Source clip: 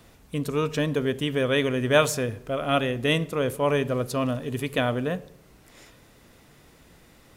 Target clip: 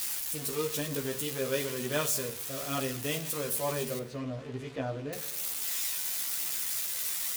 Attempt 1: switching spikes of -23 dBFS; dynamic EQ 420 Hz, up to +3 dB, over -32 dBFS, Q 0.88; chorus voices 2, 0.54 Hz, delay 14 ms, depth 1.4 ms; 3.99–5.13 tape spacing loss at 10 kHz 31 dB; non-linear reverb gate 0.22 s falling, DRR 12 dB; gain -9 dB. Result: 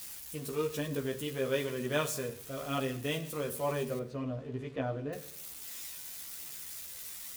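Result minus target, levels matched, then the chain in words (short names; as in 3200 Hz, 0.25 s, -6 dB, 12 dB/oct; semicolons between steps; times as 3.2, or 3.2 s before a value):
switching spikes: distortion -11 dB
switching spikes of -12 dBFS; dynamic EQ 420 Hz, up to +3 dB, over -32 dBFS, Q 0.88; chorus voices 2, 0.54 Hz, delay 14 ms, depth 1.4 ms; 3.99–5.13 tape spacing loss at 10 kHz 31 dB; non-linear reverb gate 0.22 s falling, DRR 12 dB; gain -9 dB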